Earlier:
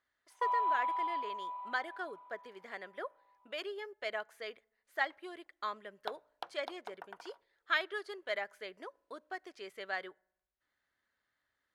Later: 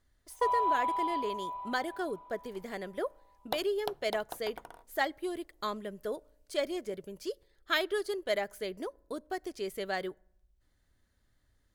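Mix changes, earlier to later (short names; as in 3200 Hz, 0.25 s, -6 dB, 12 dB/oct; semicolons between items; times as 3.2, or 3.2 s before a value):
second sound: entry -2.55 s; master: remove band-pass 1600 Hz, Q 0.93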